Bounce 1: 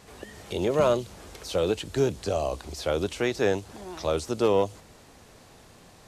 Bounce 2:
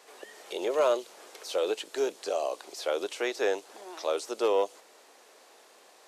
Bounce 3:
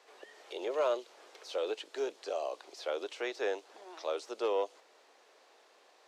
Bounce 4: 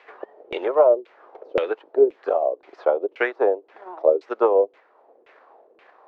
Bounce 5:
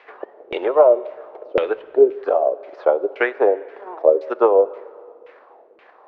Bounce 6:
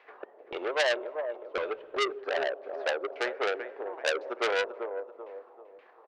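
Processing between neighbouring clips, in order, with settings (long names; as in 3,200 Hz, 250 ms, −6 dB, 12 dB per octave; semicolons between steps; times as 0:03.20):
high-pass filter 380 Hz 24 dB per octave; level −2 dB
three-way crossover with the lows and the highs turned down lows −21 dB, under 230 Hz, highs −13 dB, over 6,100 Hz; level −5.5 dB
transient designer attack +8 dB, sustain −5 dB; auto-filter low-pass saw down 1.9 Hz 340–2,500 Hz; level +7.5 dB
high-frequency loss of the air 74 metres; dense smooth reverb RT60 2.2 s, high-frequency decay 0.85×, DRR 17 dB; level +3.5 dB
repeating echo 387 ms, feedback 36%, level −12 dB; saturating transformer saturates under 3,300 Hz; level −9 dB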